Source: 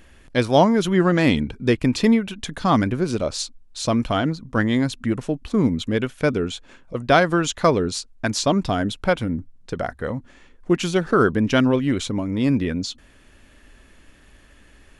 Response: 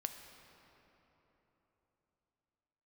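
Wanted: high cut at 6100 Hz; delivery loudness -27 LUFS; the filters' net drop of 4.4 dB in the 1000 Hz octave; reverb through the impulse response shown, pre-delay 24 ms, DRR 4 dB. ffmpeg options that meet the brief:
-filter_complex "[0:a]lowpass=6.1k,equalizer=f=1k:t=o:g=-6.5,asplit=2[a][b];[1:a]atrim=start_sample=2205,adelay=24[c];[b][c]afir=irnorm=-1:irlink=0,volume=-3dB[d];[a][d]amix=inputs=2:normalize=0,volume=-6dB"

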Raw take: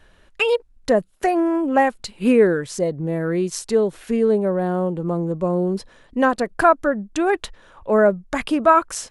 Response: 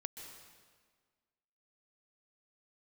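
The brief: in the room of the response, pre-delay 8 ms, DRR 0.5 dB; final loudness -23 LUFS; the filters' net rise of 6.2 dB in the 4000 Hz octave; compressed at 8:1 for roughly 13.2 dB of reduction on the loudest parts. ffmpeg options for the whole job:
-filter_complex "[0:a]equalizer=f=4k:t=o:g=8.5,acompressor=threshold=-23dB:ratio=8,asplit=2[a][b];[1:a]atrim=start_sample=2205,adelay=8[c];[b][c]afir=irnorm=-1:irlink=0,volume=2dB[d];[a][d]amix=inputs=2:normalize=0,volume=2.5dB"

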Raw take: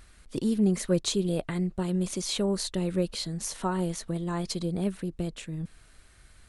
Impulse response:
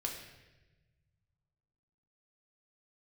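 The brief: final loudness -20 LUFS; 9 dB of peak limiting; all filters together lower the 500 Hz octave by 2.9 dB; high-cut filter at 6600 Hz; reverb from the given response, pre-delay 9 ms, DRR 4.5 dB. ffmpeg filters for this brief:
-filter_complex "[0:a]lowpass=6.6k,equalizer=f=500:t=o:g=-4,alimiter=limit=-23dB:level=0:latency=1,asplit=2[a][b];[1:a]atrim=start_sample=2205,adelay=9[c];[b][c]afir=irnorm=-1:irlink=0,volume=-5.5dB[d];[a][d]amix=inputs=2:normalize=0,volume=12.5dB"

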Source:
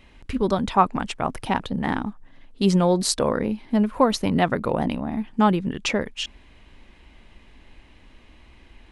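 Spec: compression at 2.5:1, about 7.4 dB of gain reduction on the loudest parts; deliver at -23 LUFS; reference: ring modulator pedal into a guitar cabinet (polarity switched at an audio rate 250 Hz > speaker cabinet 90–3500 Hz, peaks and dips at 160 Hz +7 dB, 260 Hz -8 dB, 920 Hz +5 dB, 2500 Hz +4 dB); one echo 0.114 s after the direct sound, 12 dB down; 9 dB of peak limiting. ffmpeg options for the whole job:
-af "acompressor=threshold=-24dB:ratio=2.5,alimiter=limit=-20dB:level=0:latency=1,aecho=1:1:114:0.251,aeval=exprs='val(0)*sgn(sin(2*PI*250*n/s))':c=same,highpass=90,equalizer=f=160:t=q:w=4:g=7,equalizer=f=260:t=q:w=4:g=-8,equalizer=f=920:t=q:w=4:g=5,equalizer=f=2.5k:t=q:w=4:g=4,lowpass=f=3.5k:w=0.5412,lowpass=f=3.5k:w=1.3066,volume=8dB"

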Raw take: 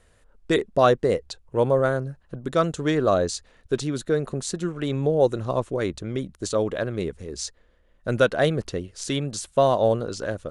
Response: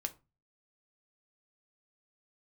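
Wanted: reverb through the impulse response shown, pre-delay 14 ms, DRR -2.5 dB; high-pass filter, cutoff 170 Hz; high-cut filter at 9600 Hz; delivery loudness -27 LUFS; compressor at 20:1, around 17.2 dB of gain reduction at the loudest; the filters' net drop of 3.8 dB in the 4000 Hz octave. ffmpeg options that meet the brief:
-filter_complex "[0:a]highpass=170,lowpass=9.6k,equalizer=f=4k:t=o:g=-4.5,acompressor=threshold=-30dB:ratio=20,asplit=2[a][b];[1:a]atrim=start_sample=2205,adelay=14[c];[b][c]afir=irnorm=-1:irlink=0,volume=3dB[d];[a][d]amix=inputs=2:normalize=0,volume=5dB"

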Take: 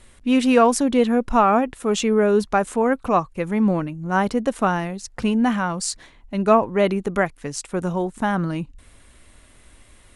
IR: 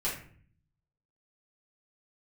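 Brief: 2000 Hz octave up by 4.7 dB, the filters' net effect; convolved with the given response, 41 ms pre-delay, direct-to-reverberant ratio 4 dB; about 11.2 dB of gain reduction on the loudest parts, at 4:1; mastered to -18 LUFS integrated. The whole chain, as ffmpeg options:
-filter_complex "[0:a]equalizer=f=2k:t=o:g=6.5,acompressor=threshold=-23dB:ratio=4,asplit=2[a][b];[1:a]atrim=start_sample=2205,adelay=41[c];[b][c]afir=irnorm=-1:irlink=0,volume=-10dB[d];[a][d]amix=inputs=2:normalize=0,volume=7.5dB"

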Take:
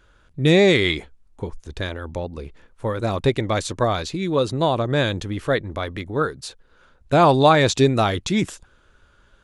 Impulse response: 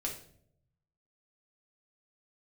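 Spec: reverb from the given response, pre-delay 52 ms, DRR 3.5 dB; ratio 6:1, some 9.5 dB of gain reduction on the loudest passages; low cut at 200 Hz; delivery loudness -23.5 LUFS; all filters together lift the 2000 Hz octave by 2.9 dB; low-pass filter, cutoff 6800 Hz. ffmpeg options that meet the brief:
-filter_complex "[0:a]highpass=200,lowpass=6.8k,equalizer=f=2k:t=o:g=3.5,acompressor=threshold=-19dB:ratio=6,asplit=2[a][b];[1:a]atrim=start_sample=2205,adelay=52[c];[b][c]afir=irnorm=-1:irlink=0,volume=-5dB[d];[a][d]amix=inputs=2:normalize=0,volume=1dB"

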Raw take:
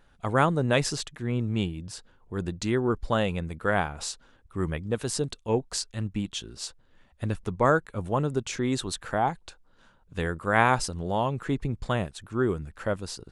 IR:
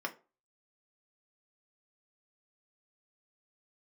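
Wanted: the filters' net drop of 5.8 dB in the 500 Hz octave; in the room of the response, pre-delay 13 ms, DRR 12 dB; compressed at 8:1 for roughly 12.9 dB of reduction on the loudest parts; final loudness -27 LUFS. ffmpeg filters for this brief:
-filter_complex "[0:a]equalizer=f=500:t=o:g=-7.5,acompressor=threshold=-31dB:ratio=8,asplit=2[a][b];[1:a]atrim=start_sample=2205,adelay=13[c];[b][c]afir=irnorm=-1:irlink=0,volume=-15.5dB[d];[a][d]amix=inputs=2:normalize=0,volume=10dB"

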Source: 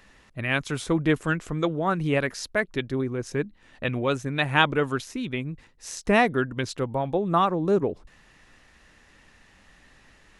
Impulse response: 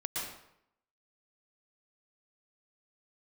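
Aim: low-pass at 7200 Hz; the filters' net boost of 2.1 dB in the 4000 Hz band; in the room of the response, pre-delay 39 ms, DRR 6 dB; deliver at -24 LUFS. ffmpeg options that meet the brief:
-filter_complex "[0:a]lowpass=7.2k,equalizer=f=4k:t=o:g=3,asplit=2[a][b];[1:a]atrim=start_sample=2205,adelay=39[c];[b][c]afir=irnorm=-1:irlink=0,volume=-10dB[d];[a][d]amix=inputs=2:normalize=0,volume=0.5dB"

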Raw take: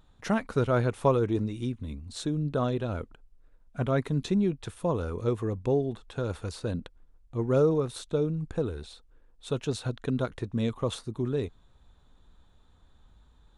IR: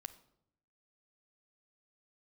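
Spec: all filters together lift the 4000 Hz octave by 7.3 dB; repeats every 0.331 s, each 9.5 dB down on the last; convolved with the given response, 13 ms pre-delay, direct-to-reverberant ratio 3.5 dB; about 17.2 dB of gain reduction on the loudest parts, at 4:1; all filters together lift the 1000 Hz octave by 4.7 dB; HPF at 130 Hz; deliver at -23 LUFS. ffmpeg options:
-filter_complex "[0:a]highpass=130,equalizer=f=1k:t=o:g=5.5,equalizer=f=4k:t=o:g=8,acompressor=threshold=-36dB:ratio=4,aecho=1:1:331|662|993|1324:0.335|0.111|0.0365|0.012,asplit=2[a][b];[1:a]atrim=start_sample=2205,adelay=13[c];[b][c]afir=irnorm=-1:irlink=0,volume=1dB[d];[a][d]amix=inputs=2:normalize=0,volume=15dB"

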